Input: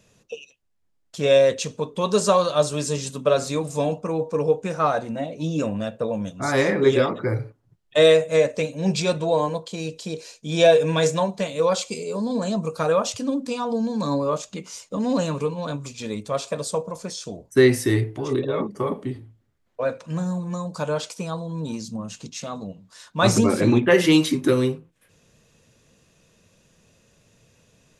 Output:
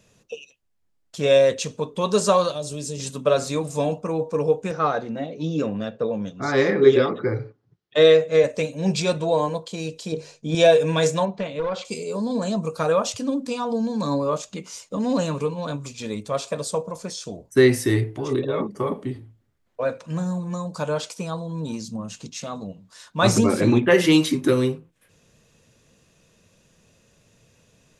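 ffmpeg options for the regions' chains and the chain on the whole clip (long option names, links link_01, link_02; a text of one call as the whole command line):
ffmpeg -i in.wav -filter_complex "[0:a]asettb=1/sr,asplit=3[link_01][link_02][link_03];[link_01]atrim=end=2.524[link_04];[link_02]atrim=start=2.52:end=3,asetpts=PTS-STARTPTS,afade=type=in:duration=0.004:curve=qsin,afade=type=out:start_time=0.476:duration=0.004:curve=qsin,equalizer=frequency=1300:width=0.98:gain=-14,acompressor=threshold=-27dB:ratio=3:attack=3.2:release=140:knee=1:detection=peak[link_05];[link_03]atrim=start=2.996[link_06];[link_04][link_05]acrossfade=duration=0.004:curve1=hsin:curve2=qsin[link_07];[link_07][link_06]acrossfade=duration=0.004:curve1=qsin:curve2=hsin,asettb=1/sr,asplit=3[link_08][link_09][link_10];[link_08]atrim=end=4.714[link_11];[link_09]atrim=start=4.71:end=8.44,asetpts=PTS-STARTPTS,afade=type=in:duration=0.004:curve=qsin,afade=type=out:start_time=3.726:duration=0.004:curve=qsin,highpass=110,equalizer=frequency=420:width_type=q:width=4:gain=5,equalizer=frequency=620:width_type=q:width=4:gain=-5,equalizer=frequency=2600:width_type=q:width=4:gain=-3,lowpass=frequency=5700:width=0.5412,lowpass=frequency=5700:width=1.3066,bandreject=frequency=950:width=14[link_12];[link_10]atrim=start=8.436[link_13];[link_11][link_12]acrossfade=duration=0.004:curve1=hsin:curve2=qsin[link_14];[link_14][link_13]acrossfade=duration=0.004:curve1=qsin:curve2=hsin,asettb=1/sr,asplit=3[link_15][link_16][link_17];[link_15]atrim=end=10.124[link_18];[link_16]atrim=start=10.12:end=10.55,asetpts=PTS-STARTPTS,afade=type=in:duration=0.004:curve=qsin,afade=type=out:start_time=0.426:duration=0.004:curve=qsin,lowpass=9800,tiltshelf=frequency=1400:gain=5.5,bandreject=frequency=50:width_type=h:width=6,bandreject=frequency=100:width_type=h:width=6,bandreject=frequency=150:width_type=h:width=6,bandreject=frequency=200:width_type=h:width=6[link_19];[link_17]atrim=start=10.546[link_20];[link_18][link_19]acrossfade=duration=0.004:curve1=hsin:curve2=qsin[link_21];[link_21][link_20]acrossfade=duration=0.004:curve1=qsin:curve2=hsin,asettb=1/sr,asplit=3[link_22][link_23][link_24];[link_22]atrim=end=11.254[link_25];[link_23]atrim=start=11.25:end=11.85,asetpts=PTS-STARTPTS,afade=type=in:duration=0.004:curve=qsin,afade=type=out:start_time=0.596:duration=0.004:curve=qsin,aeval=exprs='clip(val(0),-1,0.112)':channel_layout=same,acompressor=threshold=-22dB:ratio=3:attack=3.2:release=140:knee=1:detection=peak,lowpass=3000[link_26];[link_24]atrim=start=11.846[link_27];[link_25][link_26]acrossfade=duration=0.004:curve1=hsin:curve2=qsin[link_28];[link_28][link_27]acrossfade=duration=0.004:curve1=qsin:curve2=hsin" out.wav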